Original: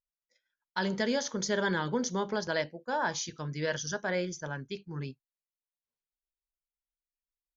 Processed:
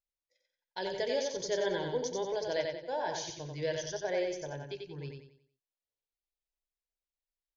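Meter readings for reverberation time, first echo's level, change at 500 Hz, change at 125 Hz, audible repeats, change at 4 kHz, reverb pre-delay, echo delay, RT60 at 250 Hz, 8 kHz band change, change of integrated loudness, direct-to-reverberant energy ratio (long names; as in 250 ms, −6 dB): no reverb audible, −4.0 dB, +1.0 dB, −6.5 dB, 4, −2.5 dB, no reverb audible, 91 ms, no reverb audible, can't be measured, −2.5 dB, no reverb audible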